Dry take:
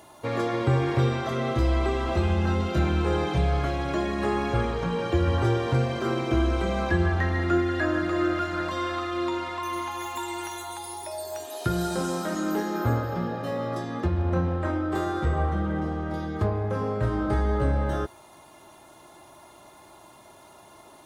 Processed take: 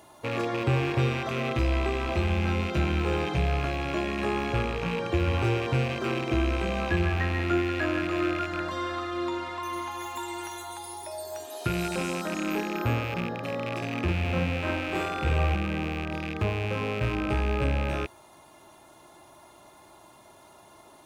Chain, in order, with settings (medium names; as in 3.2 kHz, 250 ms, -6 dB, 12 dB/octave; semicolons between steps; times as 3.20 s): rattle on loud lows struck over -32 dBFS, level -21 dBFS; 13.77–15.55 s: doubling 50 ms -2 dB; trim -2.5 dB